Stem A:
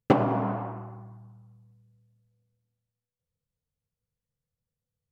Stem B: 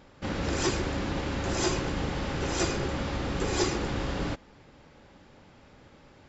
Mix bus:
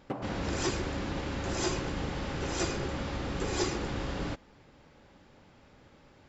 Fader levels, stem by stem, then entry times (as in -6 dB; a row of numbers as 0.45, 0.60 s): -16.0, -3.5 dB; 0.00, 0.00 s